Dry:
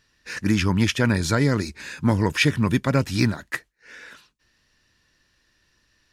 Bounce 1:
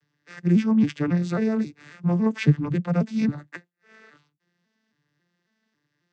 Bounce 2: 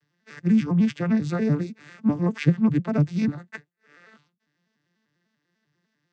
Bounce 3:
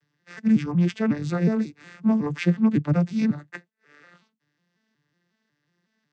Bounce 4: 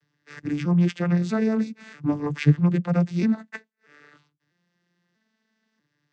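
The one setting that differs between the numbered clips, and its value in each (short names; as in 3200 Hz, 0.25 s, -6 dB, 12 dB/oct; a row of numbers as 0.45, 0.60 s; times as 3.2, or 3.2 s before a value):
arpeggiated vocoder, a note every: 273, 99, 183, 643 ms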